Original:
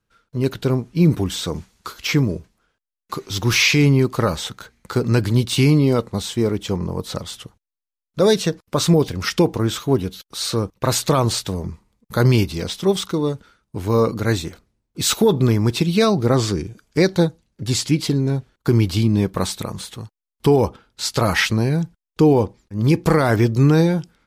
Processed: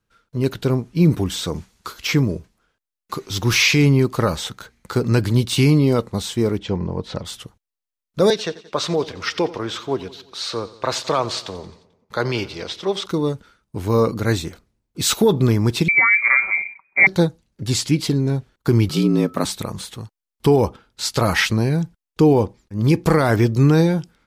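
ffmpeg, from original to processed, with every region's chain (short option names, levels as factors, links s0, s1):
-filter_complex "[0:a]asettb=1/sr,asplit=3[s0][s1][s2];[s0]atrim=end=6.594[s3];[s1]atrim=start=6.59:end=7.25,asetpts=PTS-STARTPTS,afade=t=in:d=0.004:c=qsin,afade=t=out:st=0.656:d=0.004:c=qsin,lowpass=3800,bandreject=f=1200:w=7.2[s4];[s2]atrim=start=7.246[s5];[s3][s4]acrossfade=d=0.004:c1=hsin:c2=qsin[s6];[s6][s5]acrossfade=d=0.004:c1=qsin:c2=hsin,asettb=1/sr,asplit=3[s7][s8][s9];[s7]atrim=end=8.304[s10];[s8]atrim=start=8.3:end=13.06,asetpts=PTS-STARTPTS,afade=t=in:d=0.004:c=qsin,afade=t=out:st=4.756:d=0.004:c=qsin,acrossover=split=380 6000:gain=0.224 1 0.1[s11][s12][s13];[s11][s12][s13]amix=inputs=3:normalize=0,aecho=1:1:88|176|264|352|440:0.126|0.0743|0.0438|0.0259|0.0153,atrim=end_sample=209916[s14];[s9]atrim=start=13.056[s15];[s10][s14]acrossfade=d=0.004:c1=hsin:c2=qsin[s16];[s16][s15]acrossfade=d=0.004:c1=qsin:c2=hsin,asettb=1/sr,asplit=3[s17][s18][s19];[s17]atrim=end=15.884[s20];[s18]atrim=start=15.88:end=17.07,asetpts=PTS-STARTPTS,afade=t=in:d=0.004:c=qsin,afade=t=out:st=1.186:d=0.004:c=qsin,lowpass=f=2100:t=q:w=0.5098,lowpass=f=2100:t=q:w=0.6013,lowpass=f=2100:t=q:w=0.9,lowpass=f=2100:t=q:w=2.563,afreqshift=-2500,aecho=1:1:5.2:0.47,atrim=end_sample=52479[s21];[s19]atrim=start=17.066[s22];[s20][s21]acrossfade=d=0.004:c1=hsin:c2=qsin[s23];[s23][s22]acrossfade=d=0.004:c1=qsin:c2=hsin,asettb=1/sr,asplit=3[s24][s25][s26];[s24]atrim=end=18.894[s27];[s25]atrim=start=18.89:end=19.45,asetpts=PTS-STARTPTS,afade=t=in:d=0.004:c=qsin,afade=t=out:st=0.556:d=0.004:c=qsin,afreqshift=70,aeval=exprs='val(0)+0.00631*sin(2*PI*1300*n/s)':c=same[s28];[s26]atrim=start=19.446[s29];[s27][s28]acrossfade=d=0.004:c1=hsin:c2=qsin[s30];[s30][s29]acrossfade=d=0.004:c1=qsin:c2=hsin"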